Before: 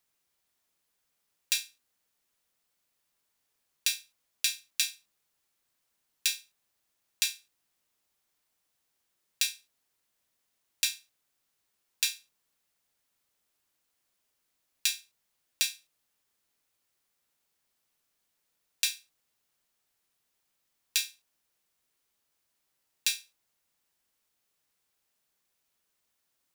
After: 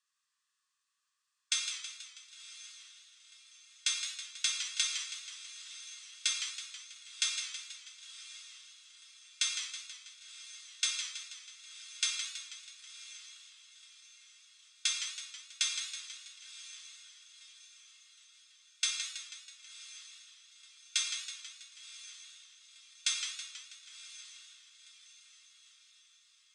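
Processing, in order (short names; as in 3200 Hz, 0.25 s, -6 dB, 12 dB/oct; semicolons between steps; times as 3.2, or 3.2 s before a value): in parallel at -5 dB: Schmitt trigger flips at -29 dBFS; on the sum: steep high-pass 1100 Hz 72 dB/oct; diffused feedback echo 1.036 s, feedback 49%, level -14 dB; on a send at -3 dB: reverb, pre-delay 30 ms; on the sum: formant shift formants -2 st; steep low-pass 9000 Hz 48 dB/oct; notch 2300 Hz, Q 8.2; warbling echo 0.162 s, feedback 59%, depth 117 cents, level -8.5 dB; gain -3 dB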